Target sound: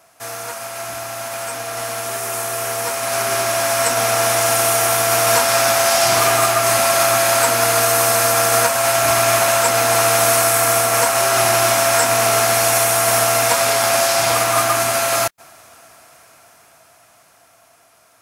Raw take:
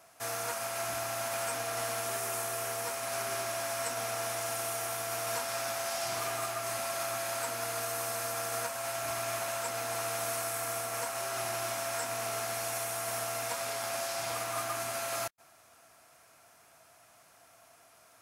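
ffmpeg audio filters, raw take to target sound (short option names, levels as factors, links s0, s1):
-af "dynaudnorm=f=730:g=9:m=4.47,aeval=exprs='0.398*(cos(1*acos(clip(val(0)/0.398,-1,1)))-cos(1*PI/2))+0.0126*(cos(5*acos(clip(val(0)/0.398,-1,1)))-cos(5*PI/2))+0.00891*(cos(7*acos(clip(val(0)/0.398,-1,1)))-cos(7*PI/2))':c=same,volume=2.11"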